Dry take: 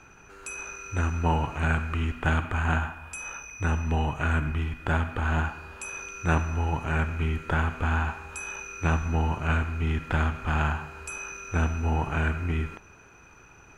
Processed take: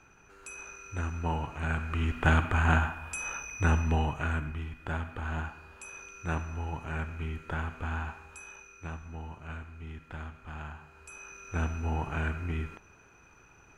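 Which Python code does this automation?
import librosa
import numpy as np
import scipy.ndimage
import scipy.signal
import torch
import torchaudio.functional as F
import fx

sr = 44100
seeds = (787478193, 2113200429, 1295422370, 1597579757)

y = fx.gain(x, sr, db=fx.line((1.65, -7.0), (2.23, 1.0), (3.76, 1.0), (4.54, -8.5), (8.16, -8.5), (8.97, -16.0), (10.69, -16.0), (11.62, -5.5)))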